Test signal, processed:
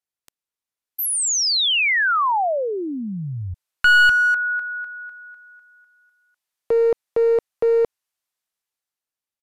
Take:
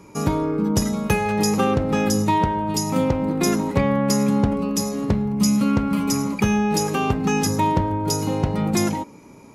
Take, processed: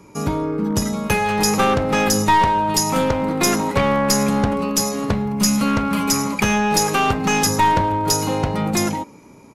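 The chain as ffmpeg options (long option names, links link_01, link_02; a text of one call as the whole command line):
ffmpeg -i in.wav -filter_complex "[0:a]acrossover=split=570[link_01][link_02];[link_02]dynaudnorm=framelen=260:gausssize=9:maxgain=9.5dB[link_03];[link_01][link_03]amix=inputs=2:normalize=0,aeval=exprs='clip(val(0),-1,0.188)':channel_layout=same,aresample=32000,aresample=44100" out.wav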